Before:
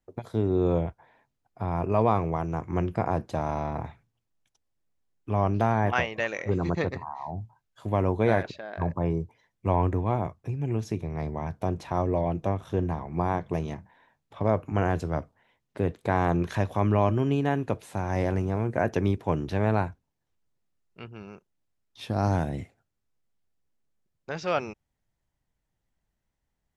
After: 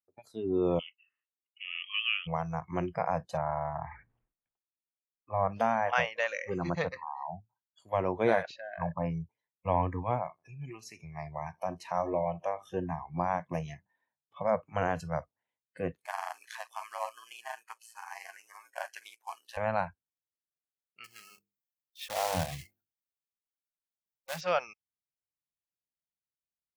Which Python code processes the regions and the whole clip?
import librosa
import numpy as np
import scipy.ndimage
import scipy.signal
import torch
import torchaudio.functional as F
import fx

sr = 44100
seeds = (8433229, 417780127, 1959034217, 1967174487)

y = fx.chain(x, sr, fx.highpass(hz=1000.0, slope=12),
    fx.freq_invert(carrier_hz=3600), at=(0.79, 2.27))
y = fx.chain(y, sr, fx.lowpass(hz=2100.0, slope=24),
    fx.sustainer(db_per_s=54.0), at=(3.37, 5.52))
y = fx.chain(y, sr, fx.low_shelf(hz=210.0, db=-5.0),
    fx.echo_feedback(ms=80, feedback_pct=39, wet_db=-17), at=(10.22, 12.68))
y = fx.chain(y, sr, fx.cvsd(bps=64000),
    fx.bessel_highpass(hz=960.0, order=4),
    fx.ring_mod(carrier_hz=57.0), at=(16.05, 19.57))
y = fx.chain(y, sr, fx.block_float(bits=3),
    fx.hum_notches(base_hz=50, count=9),
    fx.dynamic_eq(hz=1400.0, q=2.5, threshold_db=-48.0, ratio=4.0, max_db=-5), at=(21.04, 24.41))
y = fx.noise_reduce_blind(y, sr, reduce_db=22)
y = fx.highpass(y, sr, hz=140.0, slope=6)
y = y * librosa.db_to_amplitude(-1.5)